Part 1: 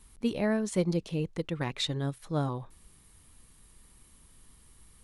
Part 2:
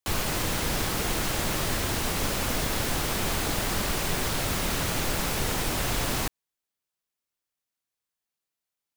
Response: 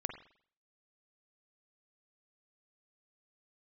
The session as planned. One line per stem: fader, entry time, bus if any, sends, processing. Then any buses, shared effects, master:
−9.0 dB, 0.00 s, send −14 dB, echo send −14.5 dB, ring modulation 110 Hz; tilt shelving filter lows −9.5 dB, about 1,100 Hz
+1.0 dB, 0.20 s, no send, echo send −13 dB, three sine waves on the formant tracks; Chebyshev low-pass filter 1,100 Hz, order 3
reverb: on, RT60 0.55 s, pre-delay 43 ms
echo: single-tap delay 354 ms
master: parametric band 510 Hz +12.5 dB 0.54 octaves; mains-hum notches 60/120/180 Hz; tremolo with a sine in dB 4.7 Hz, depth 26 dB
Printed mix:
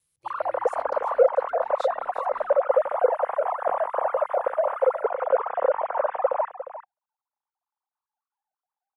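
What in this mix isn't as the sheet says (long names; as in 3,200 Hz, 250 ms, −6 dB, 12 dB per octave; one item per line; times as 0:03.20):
stem 1 −9.0 dB → −21.0 dB
master: missing tremolo with a sine in dB 4.7 Hz, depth 26 dB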